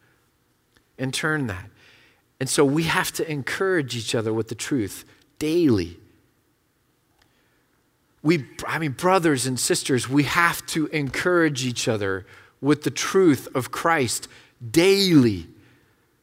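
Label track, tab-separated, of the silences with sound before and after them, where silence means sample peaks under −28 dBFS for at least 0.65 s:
1.610000	2.410000	silence
5.870000	8.250000	silence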